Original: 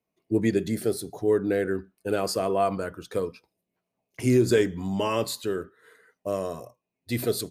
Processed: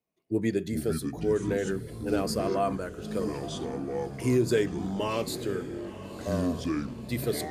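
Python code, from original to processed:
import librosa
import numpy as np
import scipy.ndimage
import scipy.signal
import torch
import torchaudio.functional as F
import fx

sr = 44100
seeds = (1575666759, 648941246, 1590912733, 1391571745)

y = fx.echo_diffused(x, sr, ms=1008, feedback_pct=42, wet_db=-13.5)
y = fx.echo_pitch(y, sr, ms=269, semitones=-6, count=3, db_per_echo=-6.0)
y = F.gain(torch.from_numpy(y), -4.0).numpy()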